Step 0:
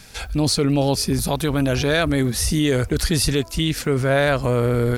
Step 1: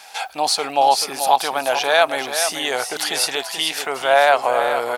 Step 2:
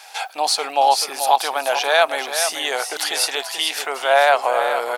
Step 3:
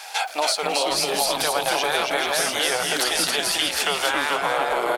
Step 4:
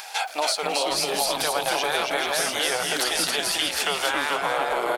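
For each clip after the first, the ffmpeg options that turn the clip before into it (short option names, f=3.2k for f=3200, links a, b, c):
-af "highpass=f=780:t=q:w=5.7,equalizer=f=2.9k:t=o:w=0.66:g=4,aecho=1:1:435:0.376,volume=1dB"
-af "highpass=400"
-filter_complex "[0:a]afftfilt=real='re*lt(hypot(re,im),0.794)':imag='im*lt(hypot(re,im),0.794)':win_size=1024:overlap=0.75,acompressor=threshold=-24dB:ratio=16,asplit=2[a][b];[b]asplit=4[c][d][e][f];[c]adelay=273,afreqshift=-130,volume=-3dB[g];[d]adelay=546,afreqshift=-260,volume=-12.9dB[h];[e]adelay=819,afreqshift=-390,volume=-22.8dB[i];[f]adelay=1092,afreqshift=-520,volume=-32.7dB[j];[g][h][i][j]amix=inputs=4:normalize=0[k];[a][k]amix=inputs=2:normalize=0,volume=4.5dB"
-af "acompressor=mode=upward:threshold=-35dB:ratio=2.5,volume=-2dB"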